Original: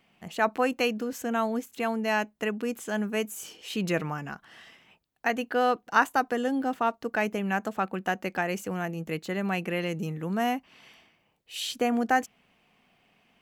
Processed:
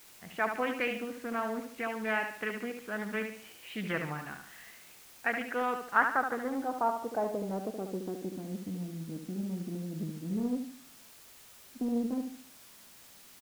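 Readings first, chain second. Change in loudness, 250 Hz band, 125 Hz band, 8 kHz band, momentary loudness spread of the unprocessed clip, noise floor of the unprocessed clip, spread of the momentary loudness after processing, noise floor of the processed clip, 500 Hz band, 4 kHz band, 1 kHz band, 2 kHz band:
-5.5 dB, -5.0 dB, -5.0 dB, -8.5 dB, 9 LU, -69 dBFS, 20 LU, -55 dBFS, -6.5 dB, -10.5 dB, -6.0 dB, -4.0 dB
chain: low-pass sweep 2.2 kHz -> 260 Hz, 5.78–8.53 s; added noise white -47 dBFS; feedback delay 73 ms, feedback 40%, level -6.5 dB; loudspeaker Doppler distortion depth 0.46 ms; trim -8.5 dB

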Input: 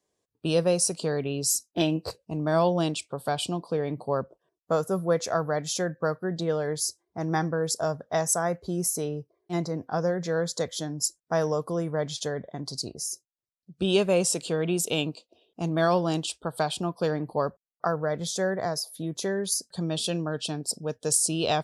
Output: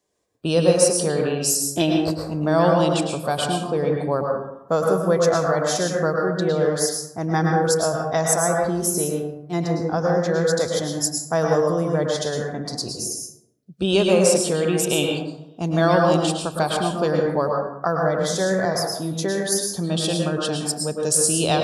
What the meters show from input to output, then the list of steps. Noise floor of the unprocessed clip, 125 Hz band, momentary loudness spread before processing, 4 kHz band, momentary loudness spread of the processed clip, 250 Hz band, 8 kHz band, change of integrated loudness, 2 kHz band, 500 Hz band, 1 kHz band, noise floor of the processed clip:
-85 dBFS, +6.5 dB, 9 LU, +5.5 dB, 9 LU, +7.0 dB, +5.5 dB, +6.5 dB, +7.0 dB, +7.5 dB, +7.0 dB, -45 dBFS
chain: plate-style reverb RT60 0.82 s, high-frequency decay 0.45×, pre-delay 95 ms, DRR 0 dB; trim +4 dB

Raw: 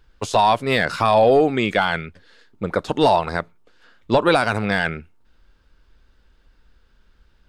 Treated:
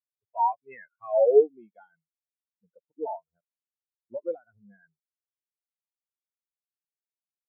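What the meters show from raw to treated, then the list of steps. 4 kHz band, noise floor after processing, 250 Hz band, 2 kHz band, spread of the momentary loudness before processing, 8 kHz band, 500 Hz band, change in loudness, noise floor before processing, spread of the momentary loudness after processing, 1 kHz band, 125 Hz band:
under -40 dB, under -85 dBFS, -22.5 dB, under -30 dB, 13 LU, under -40 dB, -6.5 dB, -6.5 dB, -58 dBFS, 21 LU, -12.5 dB, under -40 dB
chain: knee-point frequency compression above 3.1 kHz 1.5:1; low-pass sweep 2.4 kHz -> 8.8 kHz, 0.77–2.53 s; spectral contrast expander 4:1; trim -7 dB

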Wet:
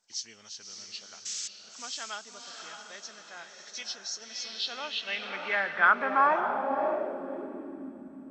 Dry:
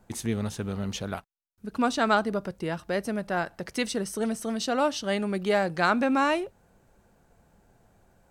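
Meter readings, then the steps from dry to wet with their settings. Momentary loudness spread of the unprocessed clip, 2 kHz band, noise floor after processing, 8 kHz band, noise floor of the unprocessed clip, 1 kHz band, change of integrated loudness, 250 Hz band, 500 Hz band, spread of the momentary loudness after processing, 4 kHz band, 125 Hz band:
10 LU, +1.5 dB, -51 dBFS, +1.0 dB, -64 dBFS, 0.0 dB, -2.5 dB, -13.5 dB, -6.5 dB, 20 LU, +1.0 dB, under -20 dB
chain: knee-point frequency compression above 2.2 kHz 1.5:1; painted sound noise, 1.25–1.48 s, 1.1–8.1 kHz -37 dBFS; on a send: echo that smears into a reverb 598 ms, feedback 43%, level -5 dB; on the sum: band-pass sweep 6 kHz -> 250 Hz, 4.21–8.01 s; trim +5.5 dB; MP2 64 kbps 32 kHz

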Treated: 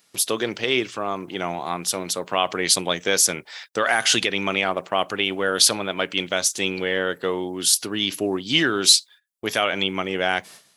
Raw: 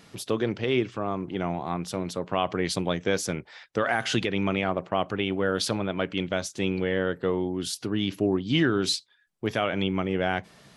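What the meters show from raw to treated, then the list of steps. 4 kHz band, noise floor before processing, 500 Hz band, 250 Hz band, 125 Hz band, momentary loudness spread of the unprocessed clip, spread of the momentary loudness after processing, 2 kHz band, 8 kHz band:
+11.0 dB, -58 dBFS, +2.0 dB, -1.5 dB, -5.5 dB, 6 LU, 10 LU, +7.5 dB, +16.5 dB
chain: RIAA curve recording; gate -47 dBFS, range -17 dB; trim +5 dB

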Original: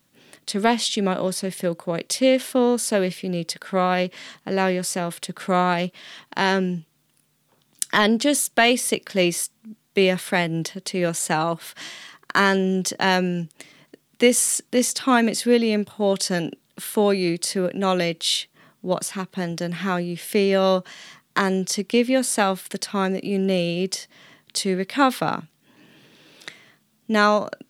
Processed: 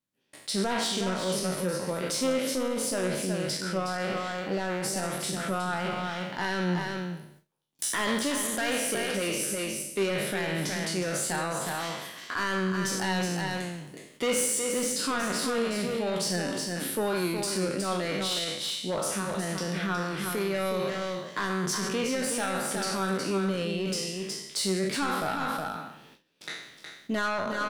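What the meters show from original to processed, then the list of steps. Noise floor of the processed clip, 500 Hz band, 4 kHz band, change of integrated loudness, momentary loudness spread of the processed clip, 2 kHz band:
-53 dBFS, -8.0 dB, -5.5 dB, -7.5 dB, 6 LU, -6.0 dB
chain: spectral sustain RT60 0.80 s; saturation -15 dBFS, distortion -10 dB; dynamic bell 1.4 kHz, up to +5 dB, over -41 dBFS, Q 3.6; delay 366 ms -6.5 dB; gate with hold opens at -37 dBFS; peak limiter -17.5 dBFS, peak gain reduction 8 dB; flange 0.21 Hz, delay 9.9 ms, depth 1.5 ms, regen +76%

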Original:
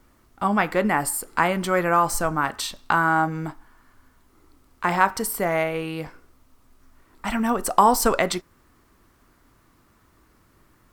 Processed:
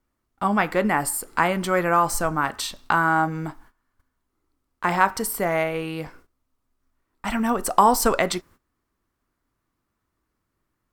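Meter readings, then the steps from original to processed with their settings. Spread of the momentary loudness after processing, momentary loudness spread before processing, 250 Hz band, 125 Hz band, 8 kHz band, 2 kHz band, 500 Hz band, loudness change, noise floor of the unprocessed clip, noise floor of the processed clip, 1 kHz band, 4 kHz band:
13 LU, 13 LU, 0.0 dB, 0.0 dB, 0.0 dB, 0.0 dB, 0.0 dB, 0.0 dB, -60 dBFS, -78 dBFS, 0.0 dB, 0.0 dB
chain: gate -48 dBFS, range -18 dB

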